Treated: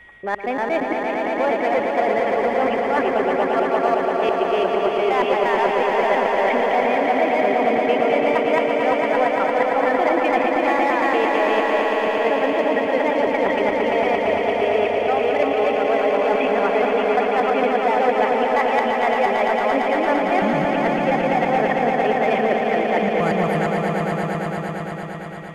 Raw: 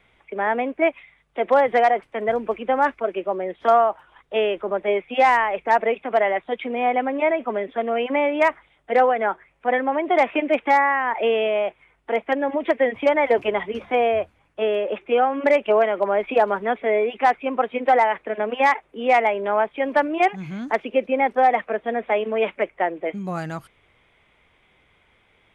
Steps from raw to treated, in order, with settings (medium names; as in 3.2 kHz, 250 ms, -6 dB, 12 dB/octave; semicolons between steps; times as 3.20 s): slices played last to first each 116 ms, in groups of 2; in parallel at -4.5 dB: hard clipper -22 dBFS, distortion -6 dB; on the sum: band-stop 3.8 kHz, Q 14; reverse; compression 6:1, threshold -23 dBFS, peak gain reduction 12 dB; reverse; whistle 1.9 kHz -47 dBFS; echo with a slow build-up 114 ms, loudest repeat 5, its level -6 dB; trim +3 dB